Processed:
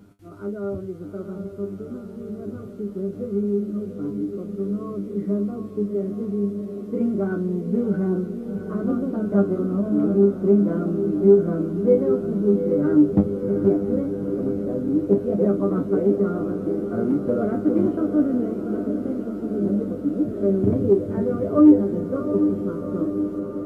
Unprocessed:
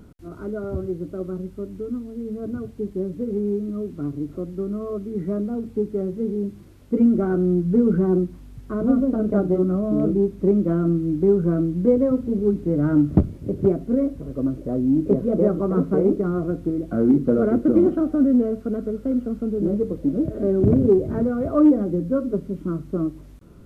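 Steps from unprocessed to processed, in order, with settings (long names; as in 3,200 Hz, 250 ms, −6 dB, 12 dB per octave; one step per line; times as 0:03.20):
high-pass filter 45 Hz
parametric band 62 Hz −13 dB 0.66 octaves
tuned comb filter 100 Hz, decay 0.19 s, harmonics all, mix 90%
feedback delay with all-pass diffusion 742 ms, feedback 71%, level −8.5 dB
level +4.5 dB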